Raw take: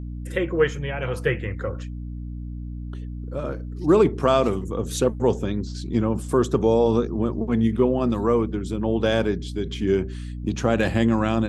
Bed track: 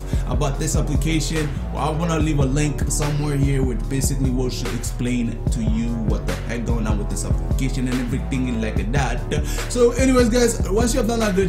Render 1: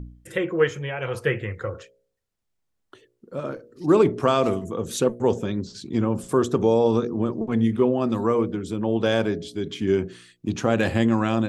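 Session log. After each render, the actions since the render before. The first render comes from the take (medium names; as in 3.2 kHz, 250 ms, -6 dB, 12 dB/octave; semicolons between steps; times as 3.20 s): de-hum 60 Hz, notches 11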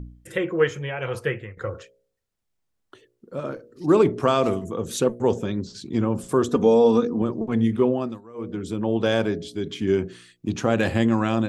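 1.15–1.57 s: fade out, to -12.5 dB; 6.48–7.22 s: comb 4.1 ms; 7.92–8.62 s: dip -23.5 dB, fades 0.29 s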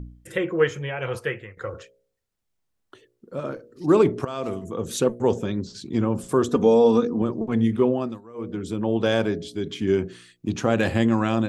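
1.17–1.73 s: bass shelf 350 Hz -6 dB; 4.25–4.84 s: fade in, from -17 dB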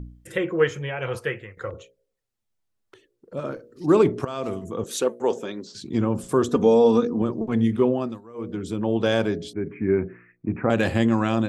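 1.70–3.37 s: touch-sensitive flanger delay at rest 10.3 ms, full sweep at -39.5 dBFS; 4.84–5.75 s: high-pass 350 Hz; 9.53–10.70 s: steep low-pass 2.4 kHz 96 dB/octave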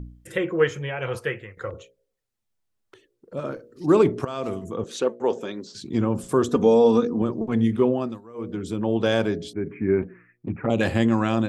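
4.76–5.41 s: distance through air 89 m; 10.02–10.81 s: touch-sensitive flanger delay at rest 9.2 ms, full sweep at -17.5 dBFS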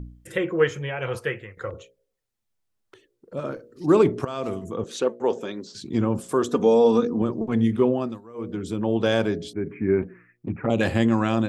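6.19–6.98 s: high-pass 340 Hz -> 130 Hz 6 dB/octave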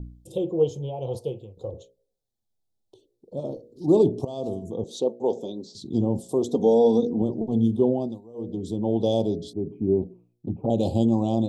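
Chebyshev band-stop 810–3600 Hz, order 3; treble shelf 5.1 kHz -5.5 dB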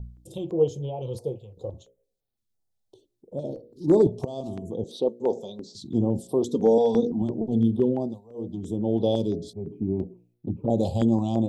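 hard clipper -10 dBFS, distortion -37 dB; step-sequenced notch 5.9 Hz 300–6900 Hz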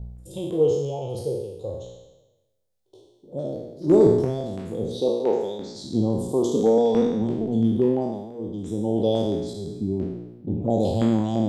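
spectral sustain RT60 1.06 s; reverse echo 74 ms -24 dB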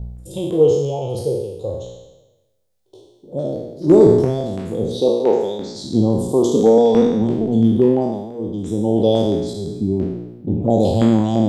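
trim +6.5 dB; peak limiter -2 dBFS, peak gain reduction 2 dB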